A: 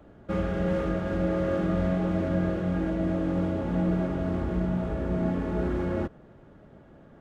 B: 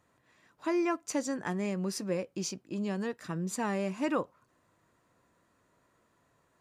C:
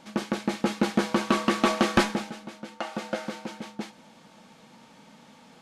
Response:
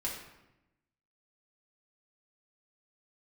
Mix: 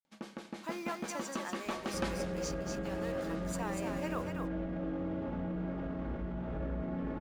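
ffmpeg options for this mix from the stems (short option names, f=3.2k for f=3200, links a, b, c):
-filter_complex "[0:a]lowpass=3.9k,alimiter=level_in=1.5dB:limit=-24dB:level=0:latency=1:release=38,volume=-1.5dB,adelay=1650,volume=-8dB,asplit=2[a][b];[b]volume=-5.5dB[c];[1:a]highpass=540,acrusher=bits=7:mix=0:aa=0.5,volume=-6dB,asplit=2[d][e];[e]volume=-4.5dB[f];[2:a]agate=range=-58dB:threshold=-43dB:ratio=16:detection=peak,adelay=50,volume=-18dB,asplit=3[g][h][i];[h]volume=-10dB[j];[i]volume=-15.5dB[k];[3:a]atrim=start_sample=2205[l];[c][j]amix=inputs=2:normalize=0[m];[m][l]afir=irnorm=-1:irlink=0[n];[f][k]amix=inputs=2:normalize=0,aecho=0:1:240:1[o];[a][d][g][n][o]amix=inputs=5:normalize=0,acompressor=mode=upward:threshold=-49dB:ratio=2.5"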